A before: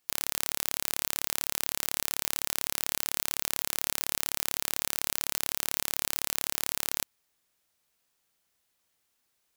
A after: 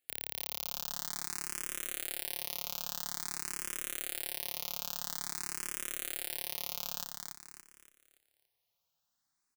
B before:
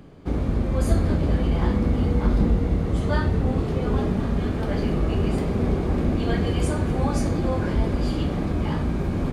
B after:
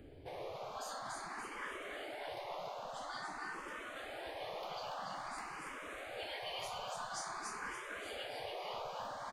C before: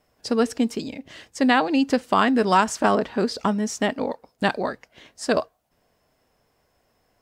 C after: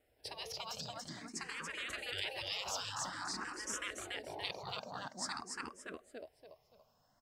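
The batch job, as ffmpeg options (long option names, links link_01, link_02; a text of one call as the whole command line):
ffmpeg -i in.wav -filter_complex "[0:a]aecho=1:1:285|570|855|1140|1425:0.631|0.24|0.0911|0.0346|0.0132,afftfilt=real='re*lt(hypot(re,im),0.126)':imag='im*lt(hypot(re,im),0.126)':win_size=1024:overlap=0.75,asplit=2[link_01][link_02];[link_02]afreqshift=0.49[link_03];[link_01][link_03]amix=inputs=2:normalize=1,volume=-5.5dB" out.wav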